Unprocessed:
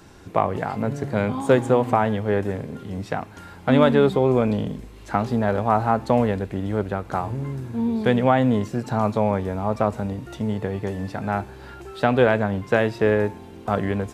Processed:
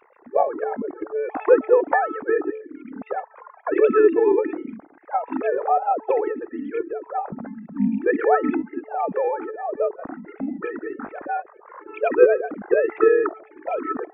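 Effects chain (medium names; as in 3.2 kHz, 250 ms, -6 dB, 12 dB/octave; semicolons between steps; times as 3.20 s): formants replaced by sine waves; de-hum 435.6 Hz, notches 16; formant shift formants -5 st; trim +1.5 dB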